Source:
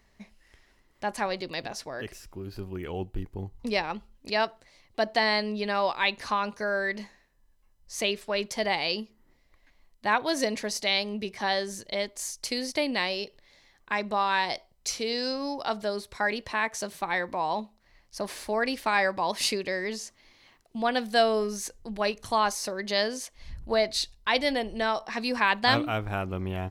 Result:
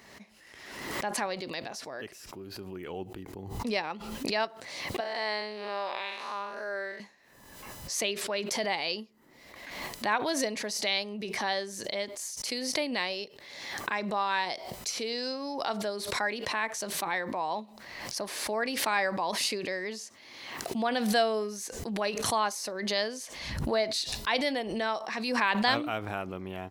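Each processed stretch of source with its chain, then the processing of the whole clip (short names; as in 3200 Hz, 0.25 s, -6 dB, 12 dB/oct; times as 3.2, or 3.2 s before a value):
5–7 time blur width 0.205 s + HPF 340 Hz
whole clip: Bessel high-pass 190 Hz, order 2; backwards sustainer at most 42 dB/s; gain -3.5 dB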